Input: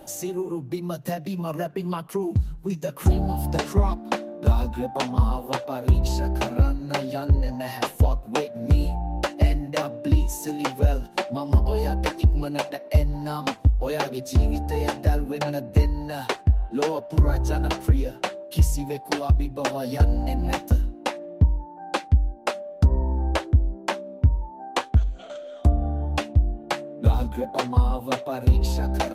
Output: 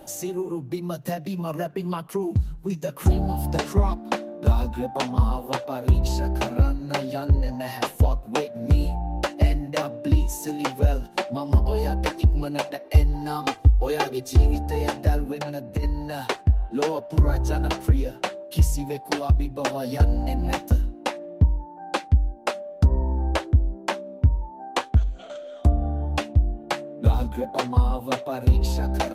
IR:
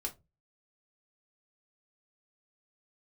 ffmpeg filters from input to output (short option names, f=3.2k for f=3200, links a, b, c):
-filter_complex "[0:a]asettb=1/sr,asplit=3[a][b][c];[a]atrim=end=12.844[d];[b]atrim=start=12.84:end=14.55,asetpts=PTS-STARTPTS,afade=t=in:d=0.004:c=qsin,afade=t=out:st=1.706:d=0.004:c=qsin,aecho=1:1:2.5:0.66,atrim=end_sample=75411[e];[c]atrim=start=14.546[f];[d][e]acrossfade=d=0.004:c1=hsin:c2=qsin[g];[g][f]acrossfade=d=0.004:c1=qsin:c2=hsin,asplit=3[h][i][j];[h]afade=t=out:st=15.33:d=0.02[k];[i]acompressor=threshold=-30dB:ratio=2,afade=t=in:st=15.33:d=0.02,afade=t=out:st=15.82:d=0.02[l];[j]afade=t=in:st=15.82:d=0.02[m];[k][l][m]amix=inputs=3:normalize=0"